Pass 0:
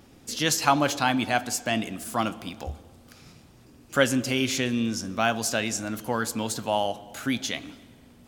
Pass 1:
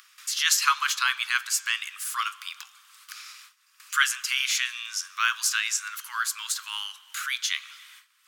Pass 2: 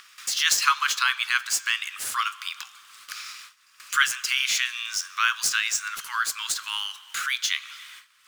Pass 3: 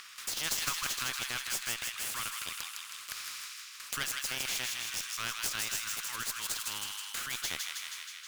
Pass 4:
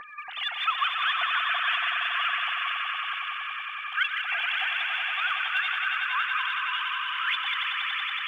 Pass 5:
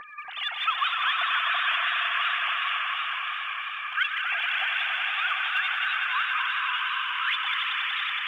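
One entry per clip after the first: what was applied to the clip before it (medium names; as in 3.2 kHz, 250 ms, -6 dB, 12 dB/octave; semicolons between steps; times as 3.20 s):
gate with hold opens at -42 dBFS; in parallel at +3 dB: upward compressor, threshold -27 dBFS; on the sum: steep high-pass 1.1 kHz 72 dB/octave; trim -4 dB
median filter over 3 samples; in parallel at -0.5 dB: compression, threshold -34 dBFS, peak gain reduction 17 dB
valve stage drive 9 dB, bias 0.65; feedback echo behind a high-pass 159 ms, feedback 55%, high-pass 1.8 kHz, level -4.5 dB; spectrum-flattening compressor 2:1; trim -6 dB
formants replaced by sine waves; phaser 0.81 Hz, delay 2.6 ms, feedback 47%; echo with a slow build-up 93 ms, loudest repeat 5, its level -8 dB; trim +3.5 dB
modulated delay 251 ms, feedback 63%, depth 112 cents, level -8 dB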